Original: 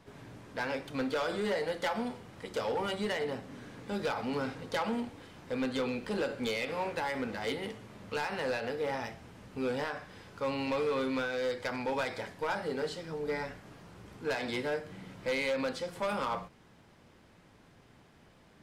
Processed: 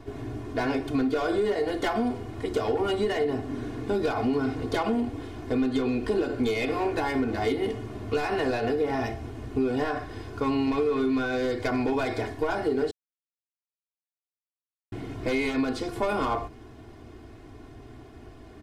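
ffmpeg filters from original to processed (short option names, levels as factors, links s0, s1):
-filter_complex "[0:a]asplit=3[s0][s1][s2];[s0]atrim=end=12.91,asetpts=PTS-STARTPTS,afade=t=out:st=12.906:d=0.004:c=hsin[s3];[s1]atrim=start=12.91:end=14.92,asetpts=PTS-STARTPTS,volume=0[s4];[s2]atrim=start=14.92,asetpts=PTS-STARTPTS,afade=t=in:d=0.004:c=hsin[s5];[s3][s4][s5]concat=n=3:v=0:a=1,tiltshelf=f=670:g=6.5,aecho=1:1:2.8:0.95,acompressor=threshold=0.0282:ratio=5,volume=2.66"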